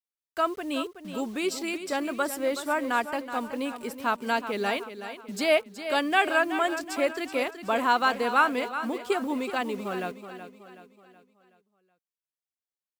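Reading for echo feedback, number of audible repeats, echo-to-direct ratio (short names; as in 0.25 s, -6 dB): 45%, 4, -10.0 dB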